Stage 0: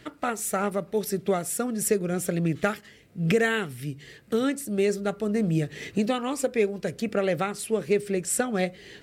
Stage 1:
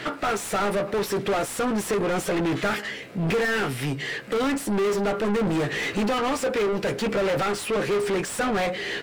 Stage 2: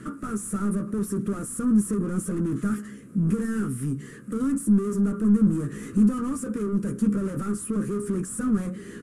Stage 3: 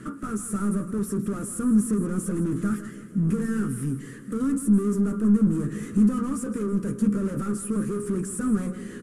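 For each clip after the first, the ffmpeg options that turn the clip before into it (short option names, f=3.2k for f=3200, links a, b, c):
-filter_complex "[0:a]asplit=2[a][b];[b]adelay=15,volume=-8.5dB[c];[a][c]amix=inputs=2:normalize=0,asplit=2[d][e];[e]highpass=f=720:p=1,volume=36dB,asoftclip=type=tanh:threshold=-10dB[f];[d][f]amix=inputs=2:normalize=0,lowpass=f=2.1k:p=1,volume=-6dB,volume=-6.5dB"
-af "firequalizer=gain_entry='entry(150,0);entry(210,9);entry(300,-2);entry(750,-28);entry(1200,-7);entry(2100,-23);entry(4100,-25);entry(6800,-7);entry(10000,4);entry(16000,-24)':delay=0.05:min_phase=1"
-af "aecho=1:1:161|322|483|644|805:0.224|0.107|0.0516|0.0248|0.0119"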